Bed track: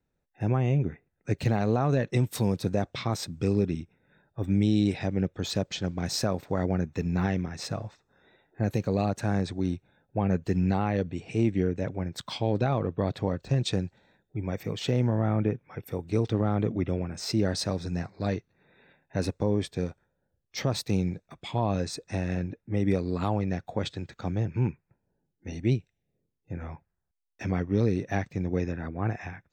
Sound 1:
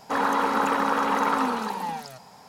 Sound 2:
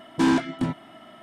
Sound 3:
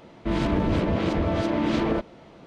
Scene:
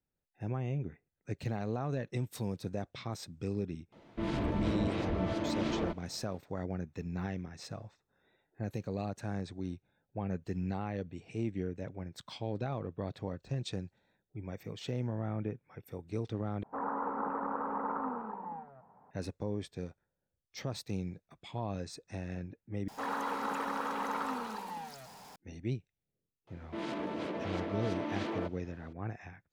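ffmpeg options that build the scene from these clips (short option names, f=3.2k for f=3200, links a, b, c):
-filter_complex "[3:a]asplit=2[a][b];[1:a]asplit=2[c][d];[0:a]volume=-10.5dB[e];[a]flanger=delay=0.9:depth=8.5:regen=-66:speed=1.5:shape=sinusoidal[f];[c]lowpass=f=1.3k:w=0.5412,lowpass=f=1.3k:w=1.3066[g];[d]aeval=exprs='val(0)+0.5*0.015*sgn(val(0))':c=same[h];[b]highpass=280[i];[e]asplit=3[j][k][l];[j]atrim=end=16.634[m];[g]atrim=end=2.48,asetpts=PTS-STARTPTS,volume=-11.5dB[n];[k]atrim=start=19.106:end=22.884[o];[h]atrim=end=2.48,asetpts=PTS-STARTPTS,volume=-13dB[p];[l]atrim=start=25.356[q];[f]atrim=end=2.46,asetpts=PTS-STARTPTS,volume=-5.5dB,afade=t=in:d=0.004:c=hsin,afade=t=out:st=2.456:d=0.004:c=hsin,adelay=3920[r];[i]atrim=end=2.46,asetpts=PTS-STARTPTS,volume=-10.5dB,afade=t=in:d=0.004:c=hsin,afade=t=out:st=2.456:d=0.004:c=hsin,adelay=26470[s];[m][n]acrossfade=d=0.004:c1=hsin:c2=hsin[t];[t][o]acrossfade=d=0.004:c1=hsin:c2=hsin[u];[u][p]acrossfade=d=0.004:c1=hsin:c2=hsin[v];[v][q]acrossfade=d=0.004:c1=hsin:c2=hsin[w];[w][r][s]amix=inputs=3:normalize=0"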